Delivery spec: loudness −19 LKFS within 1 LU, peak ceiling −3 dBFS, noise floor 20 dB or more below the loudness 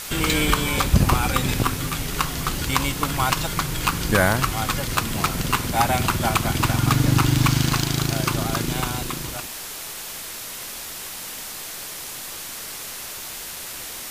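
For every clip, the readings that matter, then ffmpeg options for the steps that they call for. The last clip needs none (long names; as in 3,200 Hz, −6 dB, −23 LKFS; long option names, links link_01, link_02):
background noise floor −34 dBFS; target noise floor −43 dBFS; integrated loudness −23.0 LKFS; sample peak −1.0 dBFS; target loudness −19.0 LKFS
→ -af "afftdn=noise_reduction=9:noise_floor=-34"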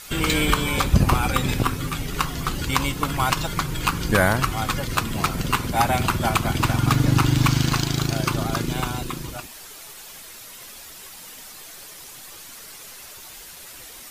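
background noise floor −41 dBFS; target noise floor −43 dBFS
→ -af "afftdn=noise_reduction=6:noise_floor=-41"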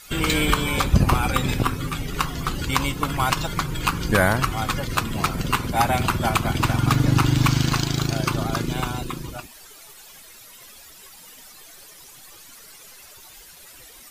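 background noise floor −46 dBFS; integrated loudness −22.5 LKFS; sample peak −1.5 dBFS; target loudness −19.0 LKFS
→ -af "volume=3.5dB,alimiter=limit=-3dB:level=0:latency=1"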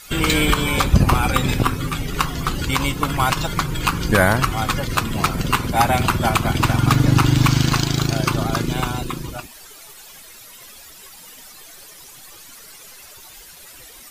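integrated loudness −19.0 LKFS; sample peak −3.0 dBFS; background noise floor −42 dBFS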